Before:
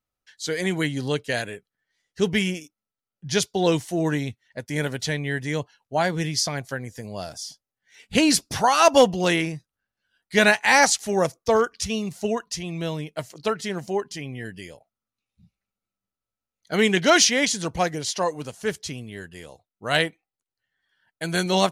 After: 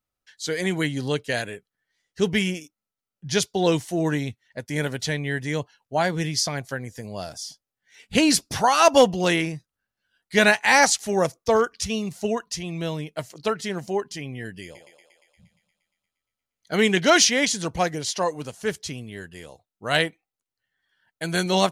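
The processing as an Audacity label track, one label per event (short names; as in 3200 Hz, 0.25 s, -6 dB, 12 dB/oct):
14.630000	16.740000	thinning echo 0.117 s, feedback 73%, high-pass 390 Hz, level -7 dB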